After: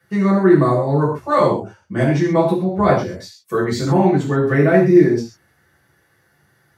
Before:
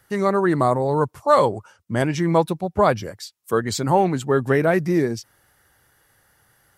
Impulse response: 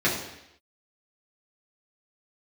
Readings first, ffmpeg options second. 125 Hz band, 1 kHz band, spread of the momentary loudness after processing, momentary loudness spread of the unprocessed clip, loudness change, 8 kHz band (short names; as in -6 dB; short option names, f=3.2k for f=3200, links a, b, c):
+6.0 dB, +0.5 dB, 12 LU, 10 LU, +4.5 dB, -4.0 dB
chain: -filter_complex "[1:a]atrim=start_sample=2205,atrim=end_sample=6615[a];[0:a][a]afir=irnorm=-1:irlink=0,volume=-12.5dB"